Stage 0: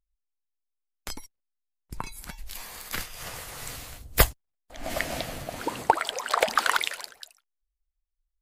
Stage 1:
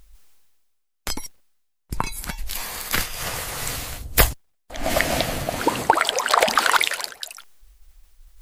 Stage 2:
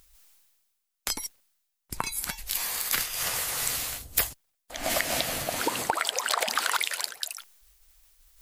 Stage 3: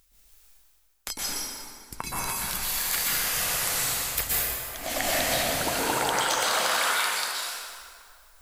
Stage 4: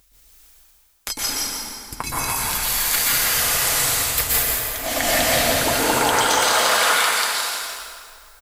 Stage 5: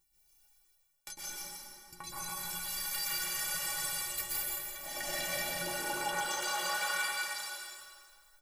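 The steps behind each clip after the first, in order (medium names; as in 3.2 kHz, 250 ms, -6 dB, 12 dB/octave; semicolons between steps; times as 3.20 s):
reverse; upward compressor, threshold -39 dBFS; reverse; loudness maximiser +11 dB; trim -1 dB
tilt EQ +2 dB/octave; compression 4:1, threshold -19 dBFS, peak gain reduction 11 dB; trim -4 dB
plate-style reverb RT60 2.2 s, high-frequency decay 0.7×, pre-delay 110 ms, DRR -7 dB; trim -4.5 dB
comb of notches 190 Hz; frequency-shifting echo 169 ms, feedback 33%, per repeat -31 Hz, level -5.5 dB; trim +7.5 dB
inharmonic resonator 170 Hz, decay 0.29 s, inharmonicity 0.03; trim -4.5 dB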